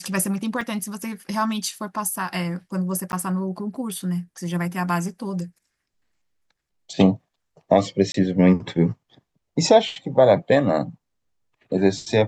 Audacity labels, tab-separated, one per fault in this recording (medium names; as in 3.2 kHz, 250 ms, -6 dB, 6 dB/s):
0.610000	0.610000	dropout 2 ms
3.120000	3.130000	dropout 9.9 ms
8.120000	8.140000	dropout 23 ms